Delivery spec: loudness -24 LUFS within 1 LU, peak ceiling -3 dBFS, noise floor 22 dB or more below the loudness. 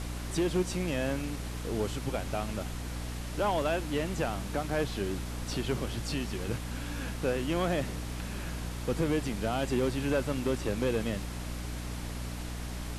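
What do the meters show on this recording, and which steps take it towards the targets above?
hum 60 Hz; harmonics up to 300 Hz; hum level -36 dBFS; noise floor -38 dBFS; noise floor target -55 dBFS; loudness -33.0 LUFS; peak -18.5 dBFS; loudness target -24.0 LUFS
-> notches 60/120/180/240/300 Hz; noise print and reduce 17 dB; gain +9 dB

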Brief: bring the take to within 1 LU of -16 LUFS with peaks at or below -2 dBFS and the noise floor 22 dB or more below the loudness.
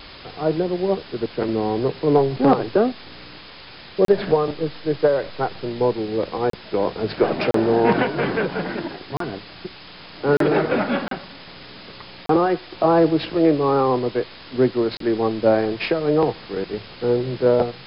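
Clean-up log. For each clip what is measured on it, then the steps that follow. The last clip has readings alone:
dropouts 8; longest dropout 33 ms; noise floor -41 dBFS; noise floor target -43 dBFS; loudness -21.0 LUFS; peak -5.0 dBFS; loudness target -16.0 LUFS
-> interpolate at 4.05/6.5/7.51/9.17/10.37/11.08/12.26/14.97, 33 ms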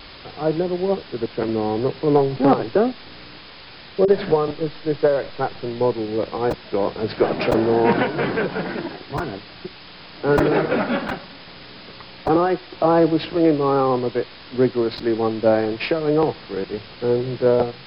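dropouts 0; noise floor -41 dBFS; noise floor target -43 dBFS
-> denoiser 6 dB, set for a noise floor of -41 dBFS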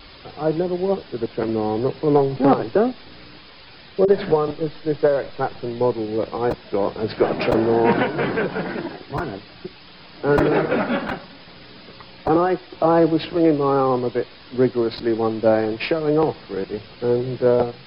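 noise floor -44 dBFS; loudness -21.0 LUFS; peak -5.0 dBFS; loudness target -16.0 LUFS
-> gain +5 dB; limiter -2 dBFS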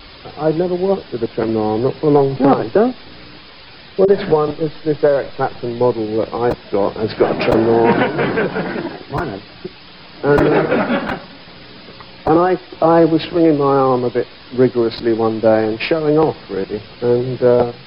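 loudness -16.5 LUFS; peak -2.0 dBFS; noise floor -39 dBFS

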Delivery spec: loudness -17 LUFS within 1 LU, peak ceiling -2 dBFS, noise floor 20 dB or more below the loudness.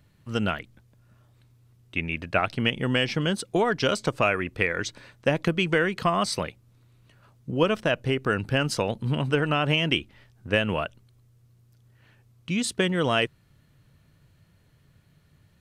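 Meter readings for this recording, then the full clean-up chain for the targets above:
loudness -26.0 LUFS; peak -6.5 dBFS; loudness target -17.0 LUFS
-> gain +9 dB; limiter -2 dBFS

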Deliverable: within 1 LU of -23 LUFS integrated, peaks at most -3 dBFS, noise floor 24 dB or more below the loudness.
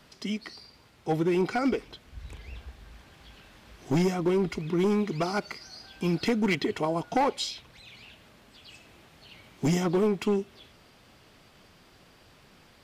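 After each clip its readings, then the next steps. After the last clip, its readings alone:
clipped 1.7%; flat tops at -19.5 dBFS; loudness -28.0 LUFS; peak -19.5 dBFS; loudness target -23.0 LUFS
-> clip repair -19.5 dBFS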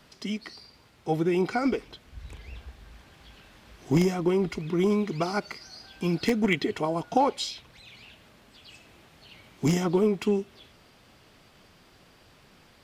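clipped 0.0%; loudness -27.0 LUFS; peak -10.5 dBFS; loudness target -23.0 LUFS
-> gain +4 dB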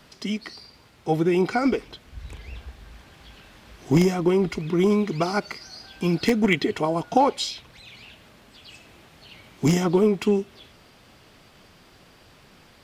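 loudness -23.0 LUFS; peak -6.5 dBFS; noise floor -54 dBFS

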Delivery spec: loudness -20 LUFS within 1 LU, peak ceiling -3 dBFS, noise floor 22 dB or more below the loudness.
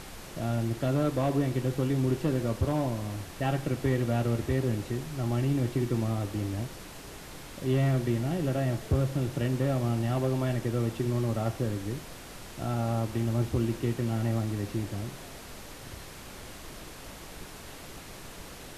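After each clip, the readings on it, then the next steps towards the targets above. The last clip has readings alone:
clipped 0.4%; flat tops at -19.0 dBFS; noise floor -45 dBFS; noise floor target -52 dBFS; loudness -30.0 LUFS; peak -19.0 dBFS; loudness target -20.0 LUFS
-> clip repair -19 dBFS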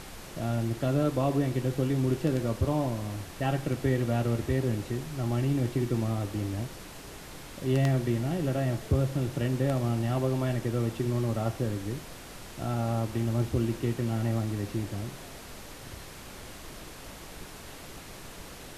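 clipped 0.0%; noise floor -45 dBFS; noise floor target -52 dBFS
-> noise print and reduce 7 dB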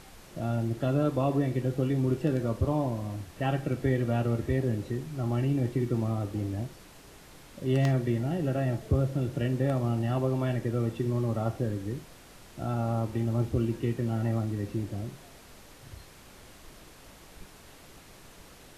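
noise floor -52 dBFS; loudness -29.5 LUFS; peak -11.0 dBFS; loudness target -20.0 LUFS
-> gain +9.5 dB; limiter -3 dBFS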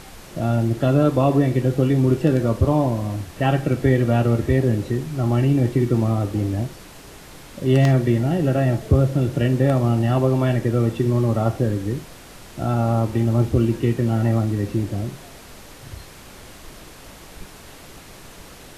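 loudness -20.0 LUFS; peak -3.0 dBFS; noise floor -43 dBFS

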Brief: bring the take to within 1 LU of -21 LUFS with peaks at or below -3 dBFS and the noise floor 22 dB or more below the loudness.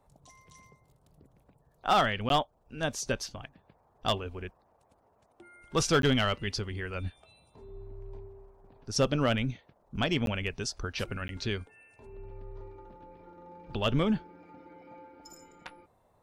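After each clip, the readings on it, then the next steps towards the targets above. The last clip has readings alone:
clipped 0.3%; flat tops at -18.0 dBFS; dropouts 4; longest dropout 12 ms; loudness -30.5 LUFS; peak -18.0 dBFS; loudness target -21.0 LUFS
-> clip repair -18 dBFS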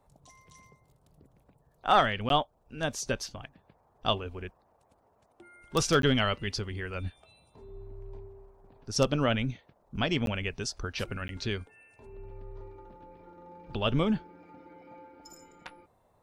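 clipped 0.0%; dropouts 4; longest dropout 12 ms
-> interpolate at 2.29/6.02/10.26/11.28, 12 ms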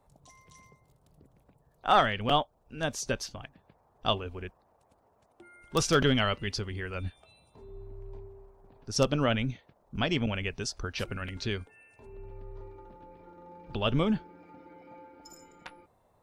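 dropouts 0; loudness -30.0 LUFS; peak -9.0 dBFS; loudness target -21.0 LUFS
-> gain +9 dB; limiter -3 dBFS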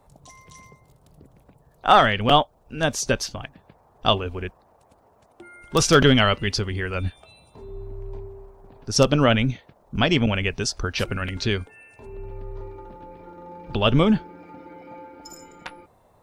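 loudness -21.5 LUFS; peak -3.0 dBFS; noise floor -59 dBFS

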